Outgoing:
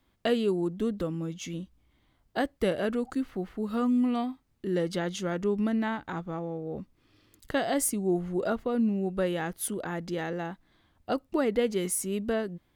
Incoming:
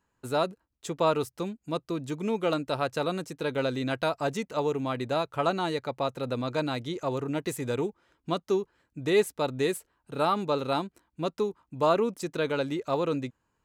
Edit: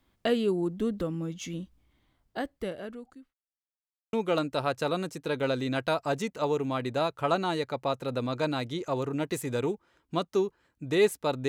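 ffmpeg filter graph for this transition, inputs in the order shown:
-filter_complex "[0:a]apad=whole_dur=11.48,atrim=end=11.48,asplit=2[a][b];[a]atrim=end=3.34,asetpts=PTS-STARTPTS,afade=t=out:st=1.72:d=1.62[c];[b]atrim=start=3.34:end=4.13,asetpts=PTS-STARTPTS,volume=0[d];[1:a]atrim=start=2.28:end=9.63,asetpts=PTS-STARTPTS,afade=t=in:d=0.004:c=hsin[e];[c][d][e]concat=n=3:v=0:a=1"

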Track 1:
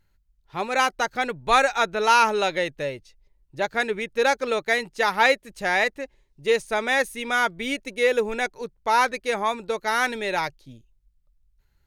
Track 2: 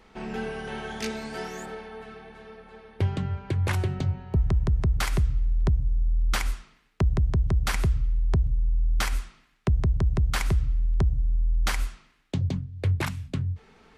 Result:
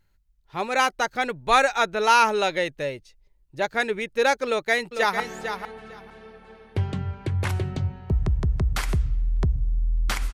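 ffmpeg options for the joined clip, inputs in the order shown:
-filter_complex "[0:a]apad=whole_dur=10.33,atrim=end=10.33,atrim=end=5.202[a];[1:a]atrim=start=1.438:end=6.57[b];[a][b]acrossfade=d=0.004:c1=hsin:c2=hsin,asplit=2[c][d];[d]afade=t=in:st=4.46:d=0.01,afade=t=out:st=5.2:d=0.01,aecho=0:1:450|900:0.375837|0.0563756[e];[c][e]amix=inputs=2:normalize=0"

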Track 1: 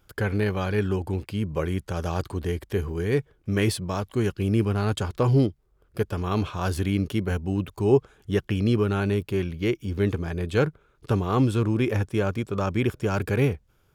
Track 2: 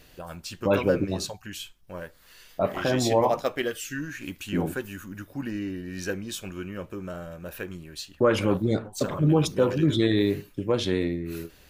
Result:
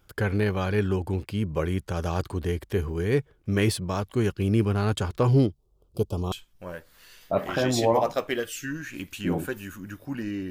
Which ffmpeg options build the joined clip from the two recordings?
-filter_complex "[0:a]asettb=1/sr,asplit=3[a][b][c];[a]atrim=end=5.524[d];[b]atrim=start=5.52:end=6.32,asetpts=PTS-STARTPTS,afade=t=in:d=0.004:c=qsin,afade=t=out:st=0.796:d=0.004:c=qsin,asuperstop=centerf=1800:order=4:qfactor=0.77[e];[c]atrim=start=6.316[f];[d][e]acrossfade=d=0.004:c1=hsin:c2=qsin[g];[g][f]acrossfade=d=0.004:c1=qsin:c2=hsin,apad=whole_dur=10.5,atrim=end=10.5,atrim=end=6.322[h];[1:a]atrim=start=1.598:end=5.78[i];[h][i]acrossfade=d=0.004:c1=hsin:c2=hsin"

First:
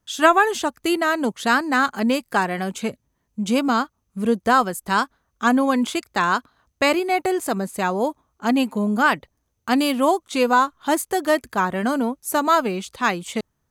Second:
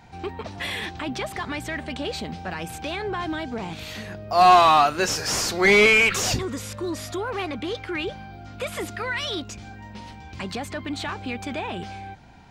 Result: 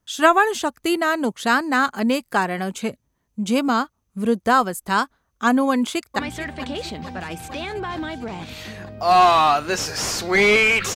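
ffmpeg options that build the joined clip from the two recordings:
-filter_complex "[0:a]apad=whole_dur=10.95,atrim=end=10.95,atrim=end=6.192[a];[1:a]atrim=start=1.488:end=6.25[b];[a][b]acrossfade=d=0.004:c1=hsin:c2=hsin,asplit=2[c][d];[d]afade=t=in:st=5.69:d=0.01,afade=t=out:st=6.19:d=0.01,aecho=0:1:450|900|1350|1800|2250|2700|3150|3600|4050|4500|4950:0.199526|0.149645|0.112234|0.0841751|0.0631313|0.0473485|0.0355114|0.0266335|0.0199752|0.0149814|0.011236[e];[c][e]amix=inputs=2:normalize=0"

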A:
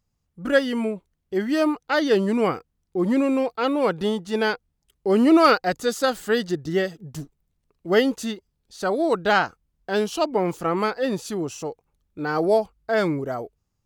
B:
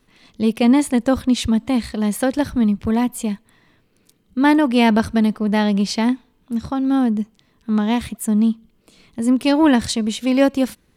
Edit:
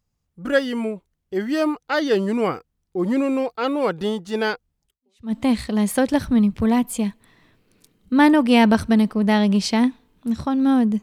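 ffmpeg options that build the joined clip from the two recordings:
-filter_complex "[0:a]apad=whole_dur=11.02,atrim=end=11.02,atrim=end=5.34,asetpts=PTS-STARTPTS[a];[1:a]atrim=start=1.11:end=7.27,asetpts=PTS-STARTPTS[b];[a][b]acrossfade=d=0.48:c1=exp:c2=exp"

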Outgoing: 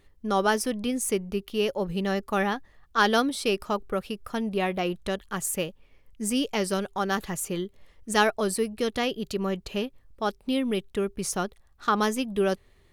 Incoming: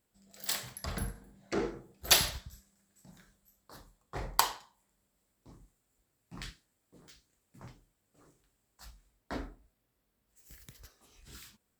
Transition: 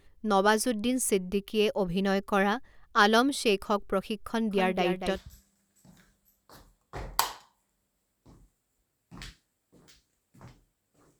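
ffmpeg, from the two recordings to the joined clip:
-filter_complex "[0:a]asettb=1/sr,asplit=3[a][b][c];[a]atrim=end=4.274[d];[b]atrim=start=4.27:end=5.2,asetpts=PTS-STARTPTS,afade=t=in:d=0.004:c=qsin,afade=t=out:st=0.926:d=0.004:c=qsin,aecho=1:1:241:0.422,atrim=end_sample=41013[e];[c]atrim=start=5.196[f];[d][e]acrossfade=d=0.004:c1=hsin:c2=qsin[g];[g][f]acrossfade=d=0.004:c1=qsin:c2=hsin,apad=whole_dur=11.19,atrim=end=11.19,atrim=end=5.2,asetpts=PTS-STARTPTS[h];[1:a]atrim=start=2.3:end=8.39,asetpts=PTS-STARTPTS[i];[h][i]acrossfade=d=0.1:c1=tri:c2=tri"

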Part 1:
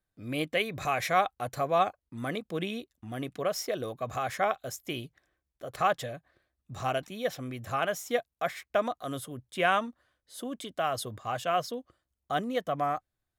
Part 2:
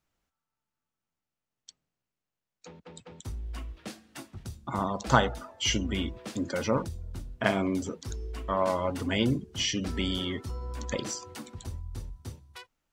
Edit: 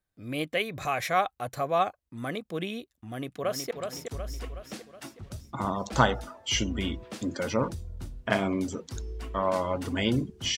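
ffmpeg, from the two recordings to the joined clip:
-filter_complex "[0:a]apad=whole_dur=10.57,atrim=end=10.57,atrim=end=3.712[a];[1:a]atrim=start=2.848:end=9.71[b];[a][b]acrossfade=d=0.004:c1=hsin:c2=hsin,asplit=2[c][d];[d]afade=t=in:st=3.06:d=0.01,afade=t=out:st=3.71:d=0.01,aecho=0:1:370|740|1110|1480|1850|2220|2590:0.530884|0.291986|0.160593|0.0883259|0.0485792|0.0267186|0.0146952[e];[c][e]amix=inputs=2:normalize=0"

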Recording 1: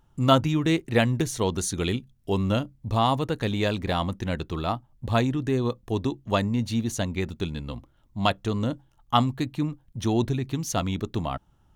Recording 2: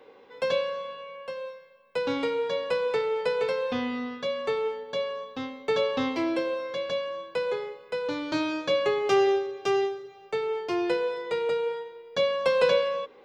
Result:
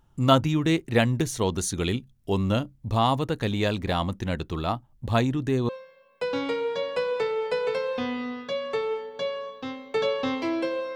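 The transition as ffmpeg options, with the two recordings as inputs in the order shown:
-filter_complex "[0:a]apad=whole_dur=10.95,atrim=end=10.95,atrim=end=5.692[a];[1:a]atrim=start=1.428:end=6.69[b];[a][b]acrossfade=d=0.004:c1=hsin:c2=hsin"

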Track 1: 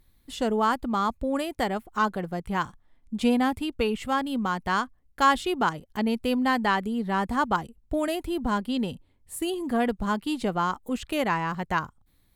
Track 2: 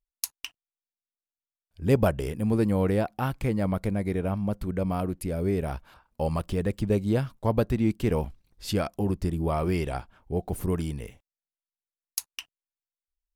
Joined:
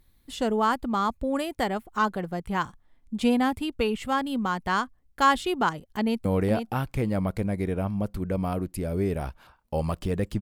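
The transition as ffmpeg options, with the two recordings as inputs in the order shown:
-filter_complex "[0:a]apad=whole_dur=10.41,atrim=end=10.41,atrim=end=6.252[a];[1:a]atrim=start=2.718:end=6.88[b];[a][b]acrossfade=d=0.004:c1=hsin:c2=hsin,asplit=2[c][d];[d]afade=t=in:st=6:d=0.01,afade=t=out:st=6.25:d=0.01,aecho=0:1:480|960:0.473151|0.0473151[e];[c][e]amix=inputs=2:normalize=0"

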